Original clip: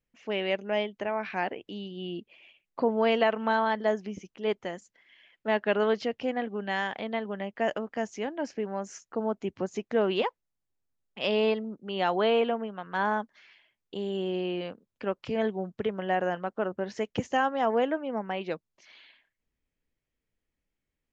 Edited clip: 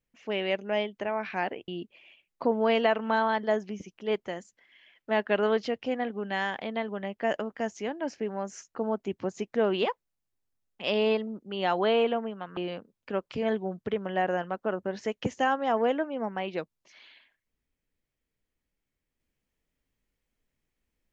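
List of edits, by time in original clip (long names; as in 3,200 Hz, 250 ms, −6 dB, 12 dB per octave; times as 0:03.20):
0:01.68–0:02.05: remove
0:12.94–0:14.50: remove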